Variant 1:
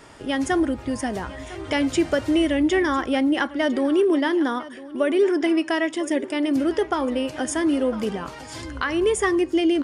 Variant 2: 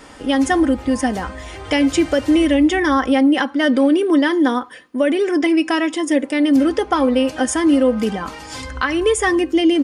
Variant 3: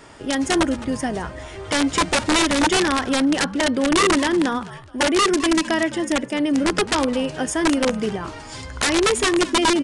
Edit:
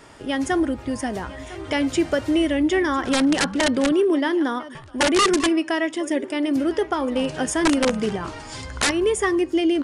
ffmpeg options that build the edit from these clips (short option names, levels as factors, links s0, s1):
-filter_complex "[2:a]asplit=3[s0][s1][s2];[0:a]asplit=4[s3][s4][s5][s6];[s3]atrim=end=3.042[s7];[s0]atrim=start=3.038:end=3.922[s8];[s4]atrim=start=3.918:end=4.752[s9];[s1]atrim=start=4.748:end=5.492[s10];[s5]atrim=start=5.488:end=7.162[s11];[s2]atrim=start=7.158:end=8.912[s12];[s6]atrim=start=8.908[s13];[s7][s8]acrossfade=d=0.004:c1=hsin:c2=hsin[s14];[s14][s9]acrossfade=d=0.004:c1=hsin:c2=hsin[s15];[s15][s10]acrossfade=d=0.004:c1=hsin:c2=hsin[s16];[s16][s11]acrossfade=d=0.004:c1=hsin:c2=hsin[s17];[s17][s12]acrossfade=d=0.004:c1=hsin:c2=hsin[s18];[s18][s13]acrossfade=d=0.004:c1=hsin:c2=hsin"